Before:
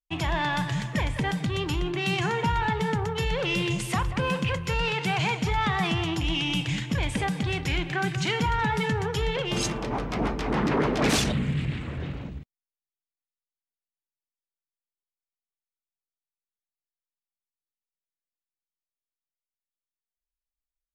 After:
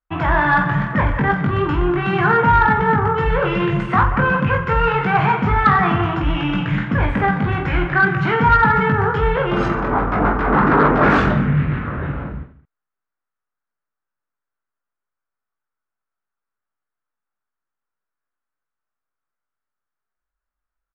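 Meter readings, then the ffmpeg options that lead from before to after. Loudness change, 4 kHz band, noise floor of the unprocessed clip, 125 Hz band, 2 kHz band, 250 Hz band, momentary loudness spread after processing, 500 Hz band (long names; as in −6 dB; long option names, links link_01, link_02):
+10.0 dB, −3.5 dB, below −85 dBFS, +8.5 dB, +11.0 dB, +9.0 dB, 7 LU, +9.5 dB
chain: -filter_complex "[0:a]asplit=2[link_01][link_02];[link_02]aecho=0:1:20|48|87.2|142.1|218.9:0.631|0.398|0.251|0.158|0.1[link_03];[link_01][link_03]amix=inputs=2:normalize=0,acrusher=bits=9:mode=log:mix=0:aa=0.000001,lowpass=frequency=1400:width_type=q:width=3.2,acontrast=72"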